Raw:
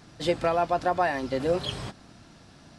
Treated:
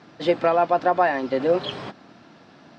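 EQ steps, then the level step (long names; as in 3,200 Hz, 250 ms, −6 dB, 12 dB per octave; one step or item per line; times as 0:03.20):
band-pass filter 220–7,100 Hz
high-frequency loss of the air 66 metres
high-shelf EQ 5,100 Hz −11 dB
+6.0 dB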